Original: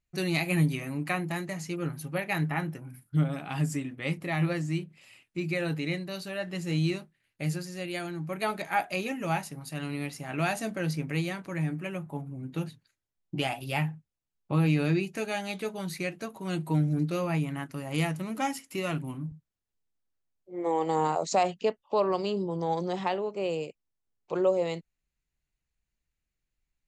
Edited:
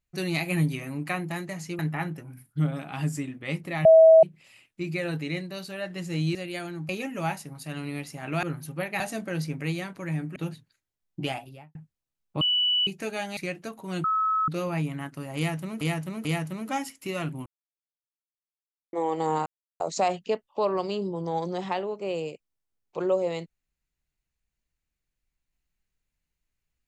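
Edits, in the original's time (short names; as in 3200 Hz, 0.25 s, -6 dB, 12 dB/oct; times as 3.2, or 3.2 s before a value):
1.79–2.36 move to 10.49
4.42–4.8 bleep 646 Hz -10 dBFS
6.92–7.75 cut
8.29–8.95 cut
11.85–12.51 cut
13.36–13.9 studio fade out
14.56–15.02 bleep 2960 Hz -20.5 dBFS
15.52–15.94 cut
16.61–17.05 bleep 1290 Hz -21.5 dBFS
17.94–18.38 loop, 3 plays
19.15–20.62 mute
21.15 insert silence 0.34 s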